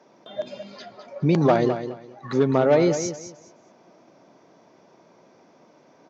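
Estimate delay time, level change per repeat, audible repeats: 208 ms, -13.0 dB, 2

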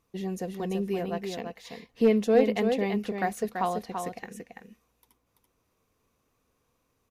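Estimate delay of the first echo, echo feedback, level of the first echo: 335 ms, no regular repeats, -6.0 dB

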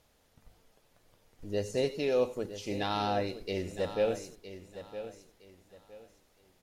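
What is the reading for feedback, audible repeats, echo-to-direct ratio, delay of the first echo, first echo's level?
28%, 3, -11.5 dB, 963 ms, -12.0 dB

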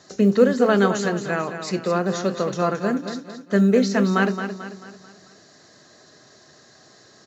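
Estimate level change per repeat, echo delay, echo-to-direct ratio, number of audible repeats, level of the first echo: -7.0 dB, 220 ms, -8.0 dB, 4, -9.0 dB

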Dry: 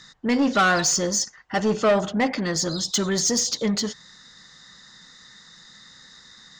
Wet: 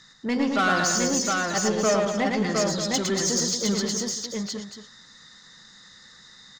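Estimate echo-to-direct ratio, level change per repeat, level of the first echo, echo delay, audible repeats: 0.5 dB, no regular repeats, -3.5 dB, 109 ms, 5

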